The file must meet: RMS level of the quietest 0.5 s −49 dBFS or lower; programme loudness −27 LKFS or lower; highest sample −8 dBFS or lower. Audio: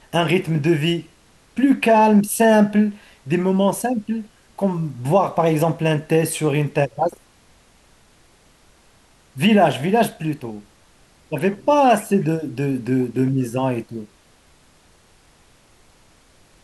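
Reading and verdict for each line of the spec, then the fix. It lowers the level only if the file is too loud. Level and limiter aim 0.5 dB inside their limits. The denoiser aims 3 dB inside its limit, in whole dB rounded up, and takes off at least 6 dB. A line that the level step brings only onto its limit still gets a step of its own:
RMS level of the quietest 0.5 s −54 dBFS: in spec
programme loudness −19.0 LKFS: out of spec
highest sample −5.5 dBFS: out of spec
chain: level −8.5 dB

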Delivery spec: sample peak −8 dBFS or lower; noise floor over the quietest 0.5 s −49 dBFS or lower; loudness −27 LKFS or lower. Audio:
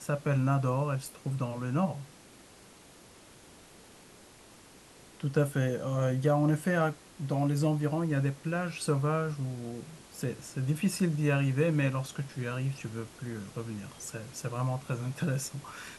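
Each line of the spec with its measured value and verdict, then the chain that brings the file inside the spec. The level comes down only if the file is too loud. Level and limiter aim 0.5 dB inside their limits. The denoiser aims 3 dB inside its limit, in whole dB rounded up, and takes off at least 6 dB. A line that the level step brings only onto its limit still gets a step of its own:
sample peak −14.0 dBFS: in spec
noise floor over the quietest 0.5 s −55 dBFS: in spec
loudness −31.5 LKFS: in spec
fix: no processing needed

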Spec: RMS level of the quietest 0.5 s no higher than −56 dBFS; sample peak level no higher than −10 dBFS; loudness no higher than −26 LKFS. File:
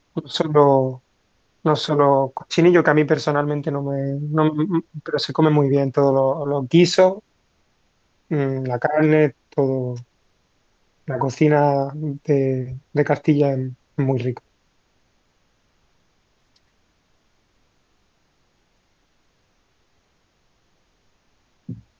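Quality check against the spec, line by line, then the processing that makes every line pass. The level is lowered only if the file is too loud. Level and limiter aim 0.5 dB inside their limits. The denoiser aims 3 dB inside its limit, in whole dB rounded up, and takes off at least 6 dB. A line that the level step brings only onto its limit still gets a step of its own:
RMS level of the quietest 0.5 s −64 dBFS: in spec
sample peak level −2.5 dBFS: out of spec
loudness −19.5 LKFS: out of spec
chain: level −7 dB
brickwall limiter −10.5 dBFS

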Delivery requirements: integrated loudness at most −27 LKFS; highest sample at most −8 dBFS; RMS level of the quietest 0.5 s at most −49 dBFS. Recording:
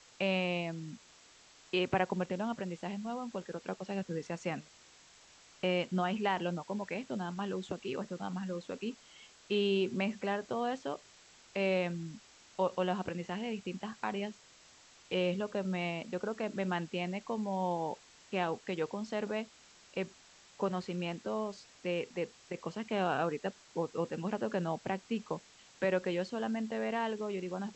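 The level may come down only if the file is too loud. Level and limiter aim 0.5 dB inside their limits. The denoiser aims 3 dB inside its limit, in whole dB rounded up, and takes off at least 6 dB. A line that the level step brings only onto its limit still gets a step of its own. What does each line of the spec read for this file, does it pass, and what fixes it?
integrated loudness −36.0 LKFS: in spec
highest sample −17.0 dBFS: in spec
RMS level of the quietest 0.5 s −60 dBFS: in spec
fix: no processing needed

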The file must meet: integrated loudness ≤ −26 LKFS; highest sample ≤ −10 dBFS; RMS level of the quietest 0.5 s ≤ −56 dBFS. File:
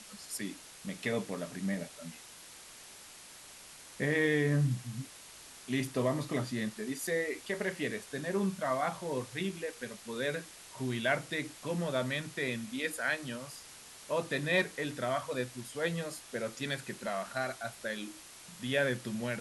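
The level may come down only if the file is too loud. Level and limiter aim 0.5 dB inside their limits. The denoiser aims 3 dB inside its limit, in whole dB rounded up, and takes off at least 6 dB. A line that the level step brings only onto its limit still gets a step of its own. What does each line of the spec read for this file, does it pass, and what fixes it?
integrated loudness −34.5 LKFS: in spec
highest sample −17.0 dBFS: in spec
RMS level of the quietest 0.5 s −52 dBFS: out of spec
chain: broadband denoise 7 dB, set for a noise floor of −52 dBFS

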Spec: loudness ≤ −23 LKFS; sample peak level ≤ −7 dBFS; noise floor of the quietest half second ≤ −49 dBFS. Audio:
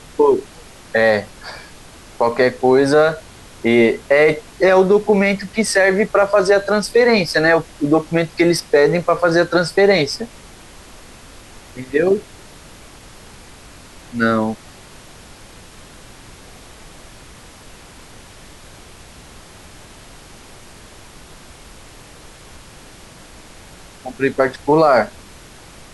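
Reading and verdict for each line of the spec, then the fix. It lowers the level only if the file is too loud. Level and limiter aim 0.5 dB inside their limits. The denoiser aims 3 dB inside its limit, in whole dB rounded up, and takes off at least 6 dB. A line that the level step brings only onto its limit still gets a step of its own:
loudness −15.5 LKFS: out of spec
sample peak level −3.5 dBFS: out of spec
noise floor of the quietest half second −41 dBFS: out of spec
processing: broadband denoise 6 dB, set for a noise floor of −41 dBFS
level −8 dB

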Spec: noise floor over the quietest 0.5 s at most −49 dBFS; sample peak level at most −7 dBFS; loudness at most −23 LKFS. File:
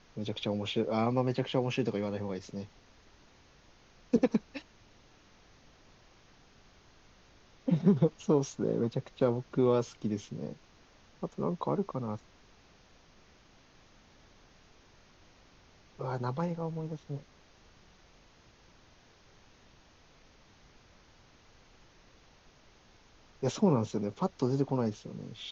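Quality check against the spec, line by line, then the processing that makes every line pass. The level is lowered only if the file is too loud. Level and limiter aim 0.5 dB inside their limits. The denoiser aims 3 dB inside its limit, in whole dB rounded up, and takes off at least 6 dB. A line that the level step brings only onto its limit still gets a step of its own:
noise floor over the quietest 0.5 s −61 dBFS: in spec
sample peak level −13.0 dBFS: in spec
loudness −32.5 LKFS: in spec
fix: no processing needed

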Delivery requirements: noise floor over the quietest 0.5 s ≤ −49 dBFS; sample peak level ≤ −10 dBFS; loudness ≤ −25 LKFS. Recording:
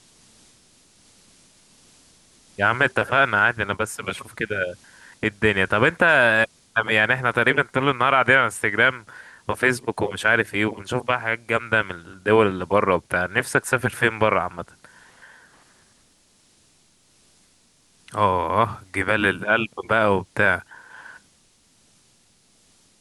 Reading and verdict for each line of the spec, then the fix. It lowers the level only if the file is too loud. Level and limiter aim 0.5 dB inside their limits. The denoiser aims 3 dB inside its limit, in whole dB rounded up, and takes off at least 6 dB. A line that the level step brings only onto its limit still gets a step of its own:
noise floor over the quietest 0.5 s −60 dBFS: in spec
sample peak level −4.0 dBFS: out of spec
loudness −20.5 LKFS: out of spec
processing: level −5 dB
brickwall limiter −10.5 dBFS

